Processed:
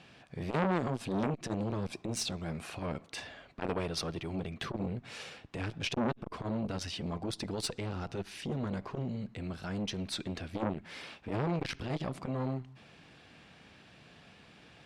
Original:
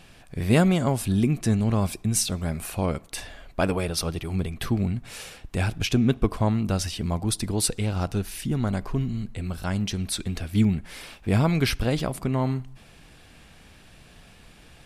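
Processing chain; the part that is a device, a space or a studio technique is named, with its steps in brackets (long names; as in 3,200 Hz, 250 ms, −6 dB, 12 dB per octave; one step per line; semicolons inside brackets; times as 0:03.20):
valve radio (band-pass filter 120–4,900 Hz; tube saturation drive 16 dB, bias 0.65; saturating transformer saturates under 1,200 Hz)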